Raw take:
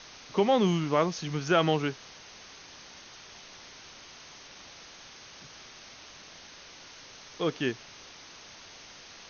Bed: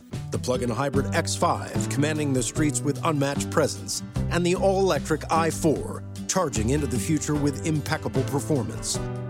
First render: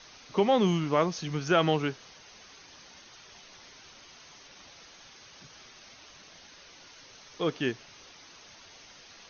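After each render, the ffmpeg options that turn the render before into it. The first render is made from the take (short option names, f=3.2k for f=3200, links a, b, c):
-af "afftdn=nr=6:nf=-50"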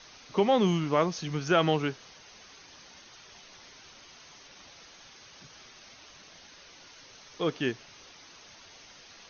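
-af anull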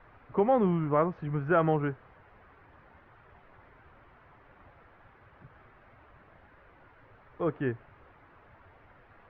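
-af "lowpass=f=1.7k:w=0.5412,lowpass=f=1.7k:w=1.3066,lowshelf=f=140:t=q:w=1.5:g=6.5"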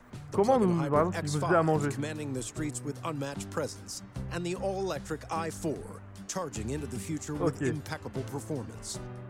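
-filter_complex "[1:a]volume=-11dB[a];[0:a][a]amix=inputs=2:normalize=0"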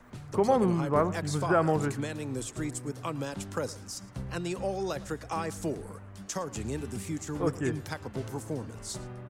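-filter_complex "[0:a]asplit=2[a][b];[b]adelay=110.8,volume=-19dB,highshelf=f=4k:g=-2.49[c];[a][c]amix=inputs=2:normalize=0"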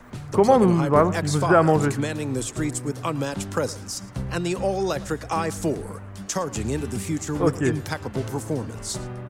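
-af "volume=8dB"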